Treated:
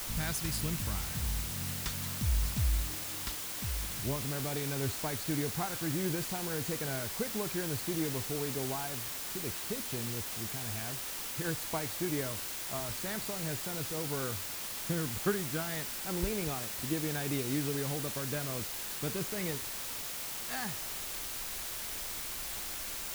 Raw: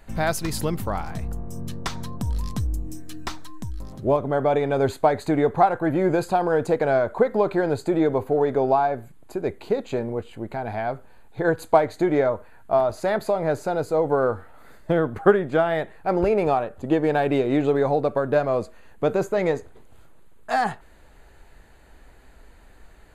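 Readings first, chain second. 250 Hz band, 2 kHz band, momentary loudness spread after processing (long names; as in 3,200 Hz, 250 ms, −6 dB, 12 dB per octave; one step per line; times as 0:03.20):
−11.5 dB, −8.5 dB, 4 LU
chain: guitar amp tone stack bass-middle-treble 6-0-2
bit-depth reduction 8 bits, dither triangular
level +8.5 dB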